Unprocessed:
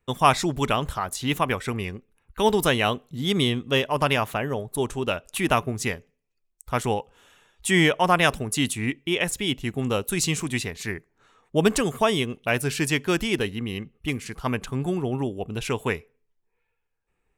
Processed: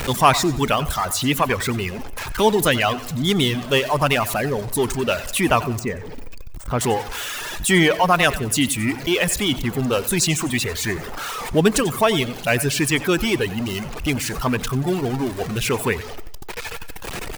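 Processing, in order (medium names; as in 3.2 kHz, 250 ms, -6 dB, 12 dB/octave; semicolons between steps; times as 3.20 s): jump at every zero crossing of -23 dBFS; 5.79–6.81 s: de-esser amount 75%; reverb removal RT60 1.4 s; feedback delay 91 ms, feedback 51%, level -17.5 dB; on a send at -19.5 dB: reverberation RT60 0.15 s, pre-delay 90 ms; on the sum: trim +2.5 dB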